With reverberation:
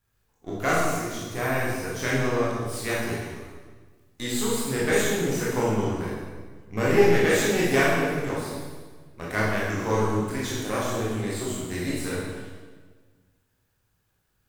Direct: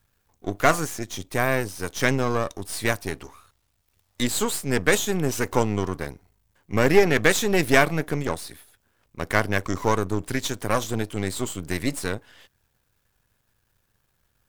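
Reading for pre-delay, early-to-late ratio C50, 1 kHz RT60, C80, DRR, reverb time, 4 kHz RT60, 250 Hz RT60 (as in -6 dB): 17 ms, -1.5 dB, 1.4 s, 1.5 dB, -7.0 dB, 1.5 s, 1.2 s, 1.7 s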